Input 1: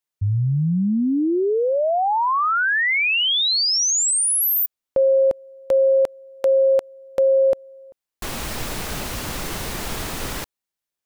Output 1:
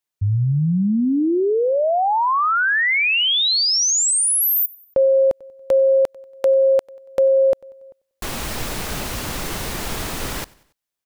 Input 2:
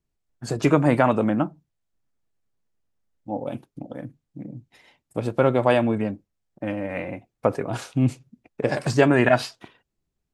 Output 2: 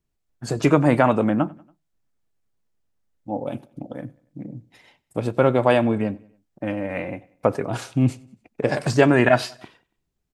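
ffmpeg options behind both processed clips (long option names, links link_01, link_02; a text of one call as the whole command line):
ffmpeg -i in.wav -af "aecho=1:1:94|188|282:0.0631|0.0309|0.0151,volume=1.5dB" out.wav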